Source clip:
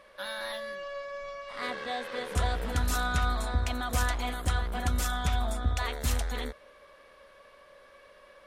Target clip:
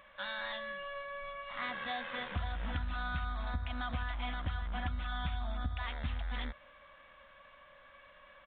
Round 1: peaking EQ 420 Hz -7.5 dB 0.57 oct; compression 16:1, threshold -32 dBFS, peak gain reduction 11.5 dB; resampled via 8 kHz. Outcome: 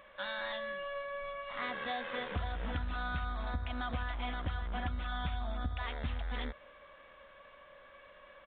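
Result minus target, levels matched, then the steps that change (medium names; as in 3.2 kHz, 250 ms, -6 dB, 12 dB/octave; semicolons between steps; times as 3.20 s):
500 Hz band +4.0 dB
change: peaking EQ 420 Hz -19.5 dB 0.57 oct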